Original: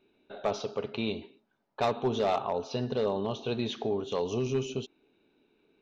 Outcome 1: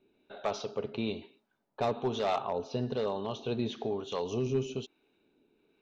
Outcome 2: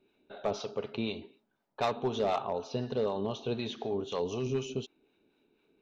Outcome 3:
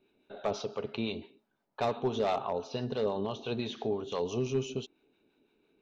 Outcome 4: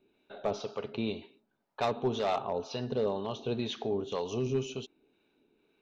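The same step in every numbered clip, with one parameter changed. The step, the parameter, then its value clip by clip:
two-band tremolo in antiphase, speed: 1.1, 4, 5.9, 2 Hertz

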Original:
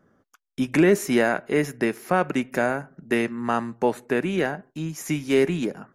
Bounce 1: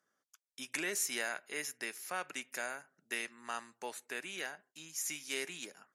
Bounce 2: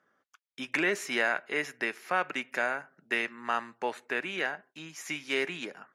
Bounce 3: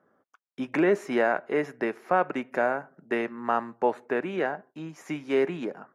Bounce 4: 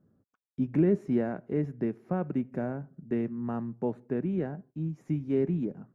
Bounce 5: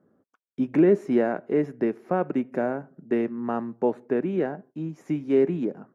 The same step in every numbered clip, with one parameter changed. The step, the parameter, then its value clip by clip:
resonant band-pass, frequency: 8,000, 2,500, 850, 110, 330 Hertz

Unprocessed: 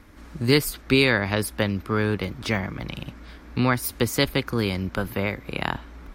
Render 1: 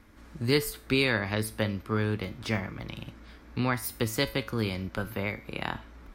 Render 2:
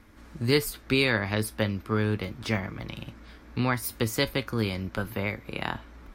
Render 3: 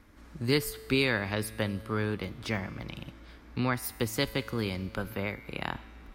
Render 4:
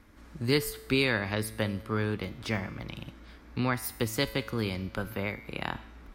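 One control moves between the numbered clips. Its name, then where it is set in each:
tuned comb filter, decay: 0.4, 0.17, 2.1, 0.98 seconds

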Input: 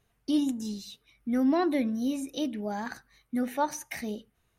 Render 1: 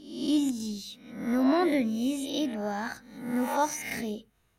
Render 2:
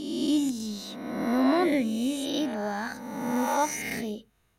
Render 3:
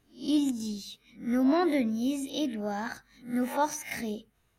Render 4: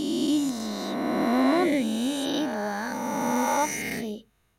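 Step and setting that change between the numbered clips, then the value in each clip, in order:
peak hold with a rise ahead of every peak, rising 60 dB in: 0.71, 1.49, 0.33, 3.19 seconds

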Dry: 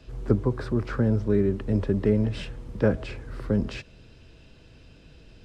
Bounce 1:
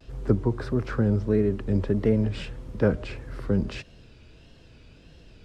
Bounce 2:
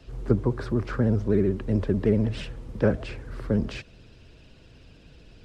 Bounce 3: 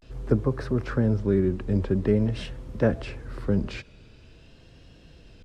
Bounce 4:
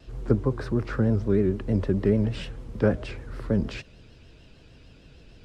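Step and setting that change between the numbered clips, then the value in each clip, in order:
pitch vibrato, speed: 1.6, 16, 0.46, 6.6 Hertz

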